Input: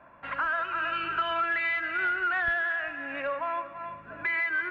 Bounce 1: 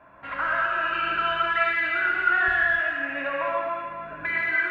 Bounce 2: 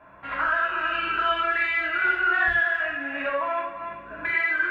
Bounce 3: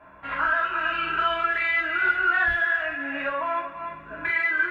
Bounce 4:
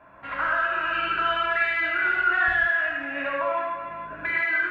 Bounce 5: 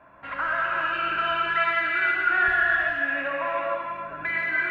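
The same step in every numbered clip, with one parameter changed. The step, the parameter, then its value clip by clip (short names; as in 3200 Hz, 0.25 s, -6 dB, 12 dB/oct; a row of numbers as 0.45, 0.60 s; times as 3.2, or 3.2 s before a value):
non-linear reverb, gate: 320, 120, 80, 200, 510 ms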